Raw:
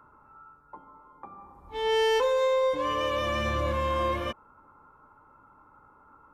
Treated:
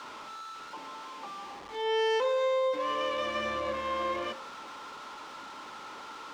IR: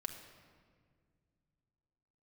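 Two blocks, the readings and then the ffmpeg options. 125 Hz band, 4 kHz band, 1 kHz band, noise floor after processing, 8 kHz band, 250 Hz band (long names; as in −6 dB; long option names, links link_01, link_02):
below −15 dB, −2.5 dB, −2.5 dB, −45 dBFS, −3.5 dB, −5.0 dB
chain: -filter_complex "[0:a]aeval=exprs='val(0)+0.5*0.02*sgn(val(0))':channel_layout=same,acrossover=split=210 6800:gain=0.112 1 0.112[link_01][link_02][link_03];[link_01][link_02][link_03]amix=inputs=3:normalize=0,bandreject=frequency=48.44:width_type=h:width=4,bandreject=frequency=96.88:width_type=h:width=4,bandreject=frequency=145.32:width_type=h:width=4,bandreject=frequency=193.76:width_type=h:width=4,bandreject=frequency=242.2:width_type=h:width=4,bandreject=frequency=290.64:width_type=h:width=4,bandreject=frequency=339.08:width_type=h:width=4,bandreject=frequency=387.52:width_type=h:width=4,bandreject=frequency=435.96:width_type=h:width=4,bandreject=frequency=484.4:width_type=h:width=4,bandreject=frequency=532.84:width_type=h:width=4,bandreject=frequency=581.28:width_type=h:width=4,bandreject=frequency=629.72:width_type=h:width=4,bandreject=frequency=678.16:width_type=h:width=4,bandreject=frequency=726.6:width_type=h:width=4,bandreject=frequency=775.04:width_type=h:width=4,bandreject=frequency=823.48:width_type=h:width=4,bandreject=frequency=871.92:width_type=h:width=4,bandreject=frequency=920.36:width_type=h:width=4,bandreject=frequency=968.8:width_type=h:width=4,bandreject=frequency=1017.24:width_type=h:width=4,bandreject=frequency=1065.68:width_type=h:width=4,bandreject=frequency=1114.12:width_type=h:width=4,bandreject=frequency=1162.56:width_type=h:width=4,bandreject=frequency=1211:width_type=h:width=4,bandreject=frequency=1259.44:width_type=h:width=4,bandreject=frequency=1307.88:width_type=h:width=4,bandreject=frequency=1356.32:width_type=h:width=4,bandreject=frequency=1404.76:width_type=h:width=4,bandreject=frequency=1453.2:width_type=h:width=4,bandreject=frequency=1501.64:width_type=h:width=4,bandreject=frequency=1550.08:width_type=h:width=4,bandreject=frequency=1598.52:width_type=h:width=4,bandreject=frequency=1646.96:width_type=h:width=4,bandreject=frequency=1695.4:width_type=h:width=4,bandreject=frequency=1743.84:width_type=h:width=4,bandreject=frequency=1792.28:width_type=h:width=4,bandreject=frequency=1840.72:width_type=h:width=4,volume=-4dB"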